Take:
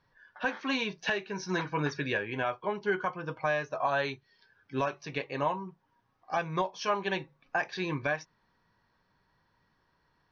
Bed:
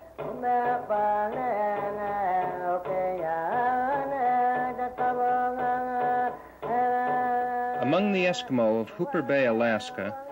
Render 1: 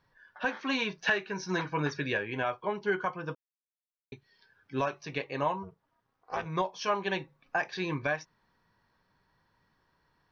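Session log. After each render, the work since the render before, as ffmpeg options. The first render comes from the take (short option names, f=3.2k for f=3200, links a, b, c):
-filter_complex "[0:a]asettb=1/sr,asplit=3[a][b][c];[a]atrim=end=0.784[d];[b]atrim=start=0.78:end=1.34,asetpts=PTS-STARTPTS,afade=t=in:d=0.004:c=qsin,afade=t=out:st=0.556:d=0.004:c=qsin,equalizer=f=1.4k:w=1.5:g=6[e];[c]atrim=start=1.336[f];[d][e]acrossfade=d=0.004:c1=hsin:c2=qsin[g];[g][f]acrossfade=d=0.004:c1=qsin:c2=hsin,asplit=3[h][i][j];[h]afade=t=out:st=5.62:d=0.02[k];[i]tremolo=f=280:d=0.947,afade=t=in:st=5.62:d=0.02,afade=t=out:st=6.45:d=0.02[l];[j]afade=t=in:st=6.45:d=0.02[m];[k][l][m]amix=inputs=3:normalize=0,asplit=3[n][o][p];[n]atrim=end=3.35,asetpts=PTS-STARTPTS,afade=t=out:st=3.346:d=0.004:c=hsin[q];[o]atrim=start=3.35:end=4.12,asetpts=PTS-STARTPTS,volume=0[r];[p]atrim=start=4.12,asetpts=PTS-STARTPTS,afade=t=in:d=0.004:c=hsin[s];[q][r][s]concat=n=3:v=0:a=1"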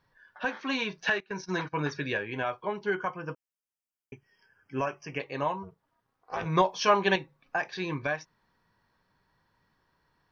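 -filter_complex "[0:a]asettb=1/sr,asplit=3[a][b][c];[a]atrim=end=1.204[d];[b]atrim=start=1.2:end=1.86,asetpts=PTS-STARTPTS,afade=t=in:d=0.004:c=qsin,afade=t=out:st=0.656:d=0.004:c=qsin,agate=range=-16dB:threshold=-41dB:ratio=16:release=100:detection=peak[e];[c]atrim=start=1.856[f];[d][e]acrossfade=d=0.004:c1=hsin:c2=qsin[g];[g][f]acrossfade=d=0.004:c1=qsin:c2=hsin,asettb=1/sr,asplit=3[h][i][j];[h]atrim=end=2.954[k];[i]atrim=start=2.95:end=5.2,asetpts=PTS-STARTPTS,afade=t=in:d=0.004:c=qsin,afade=t=out:st=2.246:d=0.004:c=qsin,asuperstop=centerf=3900:order=20:qfactor=2.8[l];[j]atrim=start=5.196[m];[k][l]acrossfade=d=0.004:c1=hsin:c2=qsin[n];[n][m]acrossfade=d=0.004:c1=qsin:c2=hsin,asettb=1/sr,asplit=3[o][p][q];[o]atrim=end=6.414[r];[p]atrim=start=6.41:end=7.16,asetpts=PTS-STARTPTS,afade=t=in:d=0.004:c=qsin,afade=t=out:st=0.746:d=0.004:c=qsin,acontrast=82[s];[q]atrim=start=7.156[t];[r][s]acrossfade=d=0.004:c1=hsin:c2=qsin[u];[u][t]acrossfade=d=0.004:c1=qsin:c2=hsin"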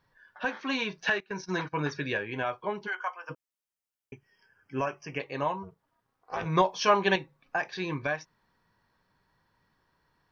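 -filter_complex "[0:a]asplit=3[a][b][c];[a]afade=t=out:st=2.86:d=0.02[d];[b]highpass=f=670:w=0.5412,highpass=f=670:w=1.3066,afade=t=in:st=2.86:d=0.02,afade=t=out:st=3.29:d=0.02[e];[c]afade=t=in:st=3.29:d=0.02[f];[d][e][f]amix=inputs=3:normalize=0"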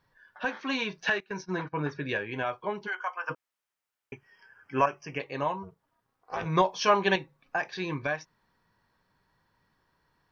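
-filter_complex "[0:a]asettb=1/sr,asplit=3[a][b][c];[a]atrim=end=1.434[d];[b]atrim=start=1.43:end=2.09,asetpts=PTS-STARTPTS,afade=t=in:d=0.004:c=qsin,afade=t=out:st=0.656:d=0.004:c=qsin,lowpass=f=1.6k:p=1[e];[c]atrim=start=2.086[f];[d][e]acrossfade=d=0.004:c1=hsin:c2=qsin[g];[g][f]acrossfade=d=0.004:c1=qsin:c2=hsin,asettb=1/sr,asplit=3[h][i][j];[h]atrim=end=3.174[k];[i]atrim=start=3.17:end=4.86,asetpts=PTS-STARTPTS,afade=t=in:d=0.004:c=qsin,afade=t=out:st=1.686:d=0.004:c=qsin,equalizer=f=1.3k:t=o:w=2.7:g=9.5[l];[j]atrim=start=4.856[m];[k][l]acrossfade=d=0.004:c1=hsin:c2=qsin[n];[n][m]acrossfade=d=0.004:c1=qsin:c2=hsin"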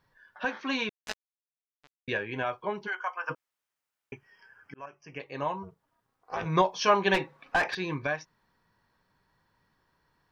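-filter_complex "[0:a]asettb=1/sr,asplit=3[a][b][c];[a]atrim=end=0.894[d];[b]atrim=start=0.89:end=2.08,asetpts=PTS-STARTPTS,afade=t=in:d=0.004:c=qsin,afade=t=out:st=1.186:d=0.004:c=qsin,acrusher=bits=2:mix=0:aa=0.5[e];[c]atrim=start=2.076[f];[d][e]acrossfade=d=0.004:c1=hsin:c2=qsin[g];[g][f]acrossfade=d=0.004:c1=qsin:c2=hsin,asettb=1/sr,asplit=3[h][i][j];[h]atrim=end=7.144[k];[i]atrim=start=7.14:end=7.75,asetpts=PTS-STARTPTS,afade=t=in:d=0.004:c=qsin,afade=t=out:st=0.606:d=0.004:c=qsin,asplit=2[l][m];[m]highpass=f=720:p=1,volume=23dB,asoftclip=type=tanh:threshold=-15.5dB[n];[l][n]amix=inputs=2:normalize=0,lowpass=f=1.7k:p=1,volume=-6dB[o];[j]atrim=start=7.746[p];[k][o]acrossfade=d=0.004:c1=hsin:c2=qsin[q];[q][p]acrossfade=d=0.004:c1=qsin:c2=hsin,asplit=2[r][s];[r]atrim=end=4.74,asetpts=PTS-STARTPTS,afade=t=out:st=4.736:d=0.004:c=hsin[t];[s]atrim=start=4.74,asetpts=PTS-STARTPTS,afade=t=in:d=0.88[u];[t][u]concat=n=2:v=0:a=1"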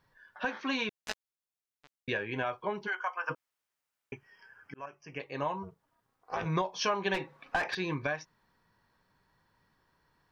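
-af "acompressor=threshold=-28dB:ratio=4"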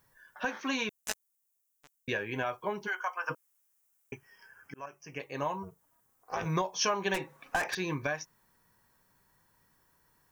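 -af "aexciter=amount=3.2:drive=8.2:freq=6.1k"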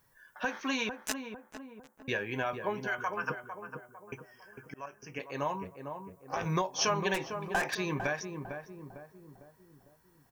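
-filter_complex "[0:a]asplit=2[a][b];[b]adelay=452,lowpass=f=1k:p=1,volume=-6dB,asplit=2[c][d];[d]adelay=452,lowpass=f=1k:p=1,volume=0.5,asplit=2[e][f];[f]adelay=452,lowpass=f=1k:p=1,volume=0.5,asplit=2[g][h];[h]adelay=452,lowpass=f=1k:p=1,volume=0.5,asplit=2[i][j];[j]adelay=452,lowpass=f=1k:p=1,volume=0.5,asplit=2[k][l];[l]adelay=452,lowpass=f=1k:p=1,volume=0.5[m];[a][c][e][g][i][k][m]amix=inputs=7:normalize=0"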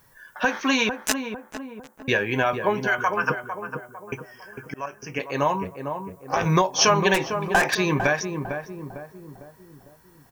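-af "volume=11dB"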